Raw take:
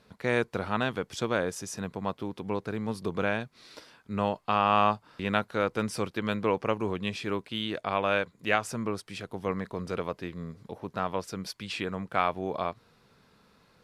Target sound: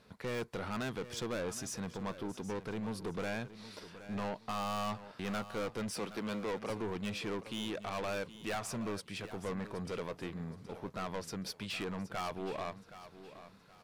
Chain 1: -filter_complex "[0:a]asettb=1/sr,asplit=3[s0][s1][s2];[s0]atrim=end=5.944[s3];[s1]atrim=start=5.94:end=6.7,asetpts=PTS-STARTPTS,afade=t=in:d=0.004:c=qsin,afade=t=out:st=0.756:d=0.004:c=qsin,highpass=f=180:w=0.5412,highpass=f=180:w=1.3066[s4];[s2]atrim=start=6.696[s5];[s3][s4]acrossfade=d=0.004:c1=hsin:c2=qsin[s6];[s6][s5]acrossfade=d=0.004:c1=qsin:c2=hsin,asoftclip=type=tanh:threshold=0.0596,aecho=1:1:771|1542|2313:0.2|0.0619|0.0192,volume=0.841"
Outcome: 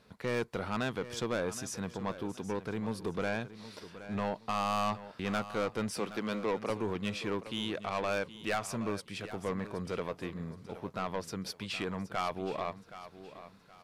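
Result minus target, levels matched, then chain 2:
saturation: distortion -4 dB
-filter_complex "[0:a]asettb=1/sr,asplit=3[s0][s1][s2];[s0]atrim=end=5.944[s3];[s1]atrim=start=5.94:end=6.7,asetpts=PTS-STARTPTS,afade=t=in:d=0.004:c=qsin,afade=t=out:st=0.756:d=0.004:c=qsin,highpass=f=180:w=0.5412,highpass=f=180:w=1.3066[s4];[s2]atrim=start=6.696[s5];[s3][s4]acrossfade=d=0.004:c1=hsin:c2=qsin[s6];[s6][s5]acrossfade=d=0.004:c1=qsin:c2=hsin,asoftclip=type=tanh:threshold=0.0251,aecho=1:1:771|1542|2313:0.2|0.0619|0.0192,volume=0.841"

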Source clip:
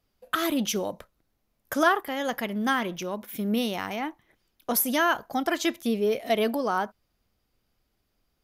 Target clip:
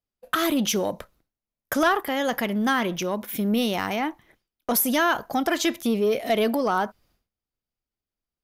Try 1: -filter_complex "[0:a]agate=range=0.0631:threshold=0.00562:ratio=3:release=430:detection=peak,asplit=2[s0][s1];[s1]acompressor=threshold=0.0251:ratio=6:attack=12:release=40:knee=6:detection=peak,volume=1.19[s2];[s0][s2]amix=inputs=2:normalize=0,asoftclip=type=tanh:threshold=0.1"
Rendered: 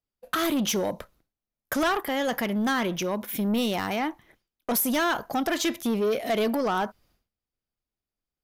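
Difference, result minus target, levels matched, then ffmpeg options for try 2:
saturation: distortion +10 dB
-filter_complex "[0:a]agate=range=0.0631:threshold=0.00562:ratio=3:release=430:detection=peak,asplit=2[s0][s1];[s1]acompressor=threshold=0.0251:ratio=6:attack=12:release=40:knee=6:detection=peak,volume=1.19[s2];[s0][s2]amix=inputs=2:normalize=0,asoftclip=type=tanh:threshold=0.251"

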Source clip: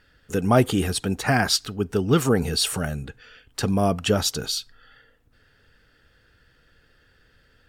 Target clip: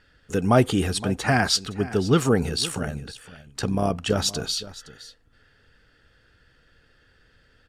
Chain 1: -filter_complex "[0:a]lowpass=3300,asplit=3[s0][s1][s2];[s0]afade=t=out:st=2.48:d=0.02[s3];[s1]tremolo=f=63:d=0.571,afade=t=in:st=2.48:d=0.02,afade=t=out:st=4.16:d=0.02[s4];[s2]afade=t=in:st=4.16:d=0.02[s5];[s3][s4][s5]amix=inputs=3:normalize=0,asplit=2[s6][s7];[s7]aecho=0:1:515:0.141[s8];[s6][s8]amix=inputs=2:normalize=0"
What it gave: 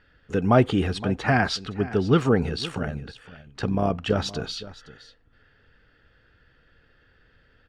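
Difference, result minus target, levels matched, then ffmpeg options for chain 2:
8 kHz band -12.0 dB
-filter_complex "[0:a]lowpass=10000,asplit=3[s0][s1][s2];[s0]afade=t=out:st=2.48:d=0.02[s3];[s1]tremolo=f=63:d=0.571,afade=t=in:st=2.48:d=0.02,afade=t=out:st=4.16:d=0.02[s4];[s2]afade=t=in:st=4.16:d=0.02[s5];[s3][s4][s5]amix=inputs=3:normalize=0,asplit=2[s6][s7];[s7]aecho=0:1:515:0.141[s8];[s6][s8]amix=inputs=2:normalize=0"

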